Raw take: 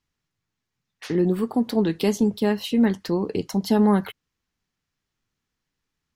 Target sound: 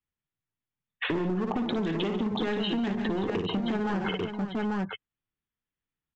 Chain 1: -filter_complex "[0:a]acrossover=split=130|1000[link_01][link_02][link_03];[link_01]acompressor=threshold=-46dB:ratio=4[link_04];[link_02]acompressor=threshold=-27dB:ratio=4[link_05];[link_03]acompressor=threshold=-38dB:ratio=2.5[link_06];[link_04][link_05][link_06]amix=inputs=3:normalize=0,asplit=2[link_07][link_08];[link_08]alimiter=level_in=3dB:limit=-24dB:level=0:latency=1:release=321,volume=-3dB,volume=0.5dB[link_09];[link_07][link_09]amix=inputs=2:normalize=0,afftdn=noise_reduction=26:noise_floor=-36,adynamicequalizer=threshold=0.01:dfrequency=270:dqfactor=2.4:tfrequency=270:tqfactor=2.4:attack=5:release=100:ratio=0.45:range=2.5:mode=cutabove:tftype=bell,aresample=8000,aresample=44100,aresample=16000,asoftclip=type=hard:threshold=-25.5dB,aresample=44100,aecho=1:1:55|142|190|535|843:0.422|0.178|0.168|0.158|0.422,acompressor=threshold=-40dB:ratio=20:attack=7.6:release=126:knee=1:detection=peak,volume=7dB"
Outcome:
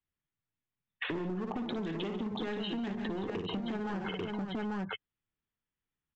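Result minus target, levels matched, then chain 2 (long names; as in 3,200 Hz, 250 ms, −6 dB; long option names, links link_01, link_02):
downward compressor: peak gain reduction +7 dB
-filter_complex "[0:a]acrossover=split=130|1000[link_01][link_02][link_03];[link_01]acompressor=threshold=-46dB:ratio=4[link_04];[link_02]acompressor=threshold=-27dB:ratio=4[link_05];[link_03]acompressor=threshold=-38dB:ratio=2.5[link_06];[link_04][link_05][link_06]amix=inputs=3:normalize=0,asplit=2[link_07][link_08];[link_08]alimiter=level_in=3dB:limit=-24dB:level=0:latency=1:release=321,volume=-3dB,volume=0.5dB[link_09];[link_07][link_09]amix=inputs=2:normalize=0,afftdn=noise_reduction=26:noise_floor=-36,adynamicequalizer=threshold=0.01:dfrequency=270:dqfactor=2.4:tfrequency=270:tqfactor=2.4:attack=5:release=100:ratio=0.45:range=2.5:mode=cutabove:tftype=bell,aresample=8000,aresample=44100,aresample=16000,asoftclip=type=hard:threshold=-25.5dB,aresample=44100,aecho=1:1:55|142|190|535|843:0.422|0.178|0.168|0.158|0.422,acompressor=threshold=-32.5dB:ratio=20:attack=7.6:release=126:knee=1:detection=peak,volume=7dB"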